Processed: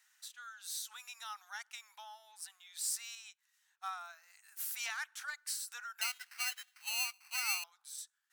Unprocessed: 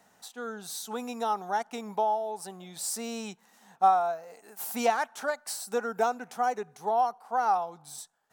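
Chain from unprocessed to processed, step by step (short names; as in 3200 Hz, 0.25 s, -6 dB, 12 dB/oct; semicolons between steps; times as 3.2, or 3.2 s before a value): 6.01–7.64 sample-rate reducer 3500 Hz, jitter 0%; inverse Chebyshev high-pass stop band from 260 Hz, stop band 80 dB; 3.15–3.91 upward expander 1.5:1, over -55 dBFS; gain -3 dB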